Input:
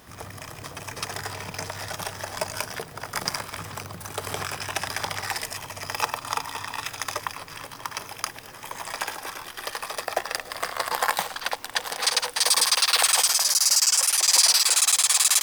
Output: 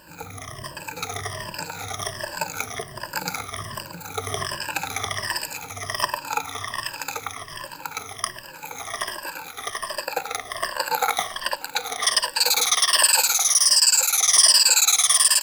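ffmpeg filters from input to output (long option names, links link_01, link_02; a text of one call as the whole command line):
ffmpeg -i in.wav -filter_complex "[0:a]afftfilt=real='re*pow(10,21/40*sin(2*PI*(1.3*log(max(b,1)*sr/1024/100)/log(2)-(-1.3)*(pts-256)/sr)))':imag='im*pow(10,21/40*sin(2*PI*(1.3*log(max(b,1)*sr/1024/100)/log(2)-(-1.3)*(pts-256)/sr)))':win_size=1024:overlap=0.75,bandreject=frequency=188.9:width_type=h:width=4,bandreject=frequency=377.8:width_type=h:width=4,bandreject=frequency=566.7:width_type=h:width=4,bandreject=frequency=755.6:width_type=h:width=4,bandreject=frequency=944.5:width_type=h:width=4,bandreject=frequency=1133.4:width_type=h:width=4,bandreject=frequency=1322.3:width_type=h:width=4,bandreject=frequency=1511.2:width_type=h:width=4,bandreject=frequency=1700.1:width_type=h:width=4,bandreject=frequency=1889:width_type=h:width=4,bandreject=frequency=2077.9:width_type=h:width=4,bandreject=frequency=2266.8:width_type=h:width=4,bandreject=frequency=2455.7:width_type=h:width=4,bandreject=frequency=2644.6:width_type=h:width=4,bandreject=frequency=2833.5:width_type=h:width=4,bandreject=frequency=3022.4:width_type=h:width=4,bandreject=frequency=3211.3:width_type=h:width=4,bandreject=frequency=3400.2:width_type=h:width=4,bandreject=frequency=3589.1:width_type=h:width=4,bandreject=frequency=3778:width_type=h:width=4,bandreject=frequency=3966.9:width_type=h:width=4,bandreject=frequency=4155.8:width_type=h:width=4,bandreject=frequency=4344.7:width_type=h:width=4,bandreject=frequency=4533.6:width_type=h:width=4,bandreject=frequency=4722.5:width_type=h:width=4,bandreject=frequency=4911.4:width_type=h:width=4,bandreject=frequency=5100.3:width_type=h:width=4,bandreject=frequency=5289.2:width_type=h:width=4,bandreject=frequency=5478.1:width_type=h:width=4,bandreject=frequency=5667:width_type=h:width=4,asplit=2[link_01][link_02];[link_02]aecho=0:1:589:0.0708[link_03];[link_01][link_03]amix=inputs=2:normalize=0,volume=-2.5dB" out.wav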